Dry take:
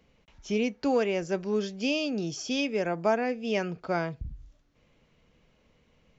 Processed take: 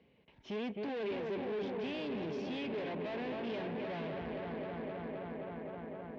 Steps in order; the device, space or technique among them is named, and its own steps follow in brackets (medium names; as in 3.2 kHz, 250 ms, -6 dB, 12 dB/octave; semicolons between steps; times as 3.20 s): analogue delay pedal into a guitar amplifier (bucket-brigade echo 261 ms, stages 4096, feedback 84%, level -8.5 dB; valve stage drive 40 dB, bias 0.7; cabinet simulation 100–3600 Hz, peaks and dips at 240 Hz +3 dB, 400 Hz +5 dB, 1.3 kHz -9 dB); trim +1.5 dB